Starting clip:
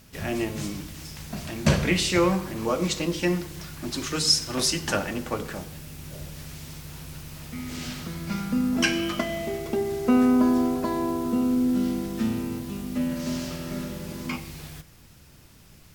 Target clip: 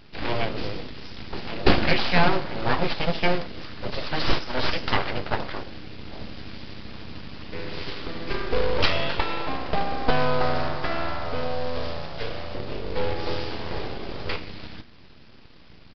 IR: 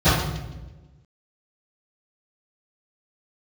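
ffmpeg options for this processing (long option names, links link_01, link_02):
-filter_complex "[0:a]asettb=1/sr,asplit=3[link_01][link_02][link_03];[link_01]atrim=end=10.104[link_04];[link_02]atrim=start=10.1:end=12.55,asetpts=PTS-STARTPTS,afade=type=in:duration=0.004:curve=qsin,afade=type=out:start_time=2.446:duration=0.004:curve=qsin,bass=frequency=250:gain=-13,treble=frequency=4000:gain=5[link_05];[link_03]atrim=start=12.546[link_06];[link_04][link_05]acrossfade=duration=0.004:curve1=hsin:curve2=qsin[link_07];[link_07][link_06]acrossfade=duration=0.004:curve1=qsin:curve2=hsin,aeval=exprs='abs(val(0))':channel_layout=same,acrusher=bits=3:mode=log:mix=0:aa=0.000001,aresample=11025,aresample=44100,volume=5dB"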